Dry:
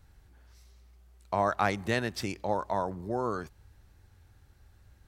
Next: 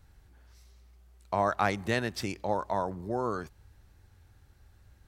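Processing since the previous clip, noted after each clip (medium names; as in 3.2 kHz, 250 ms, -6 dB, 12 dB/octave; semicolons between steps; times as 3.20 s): no audible change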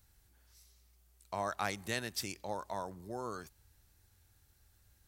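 pre-emphasis filter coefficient 0.8; trim +3.5 dB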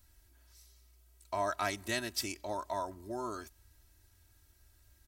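comb 3.1 ms, depth 86%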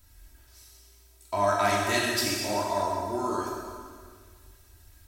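plate-style reverb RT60 1.9 s, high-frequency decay 0.9×, DRR -4 dB; trim +4.5 dB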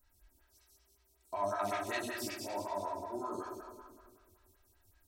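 lamp-driven phase shifter 5.3 Hz; trim -8.5 dB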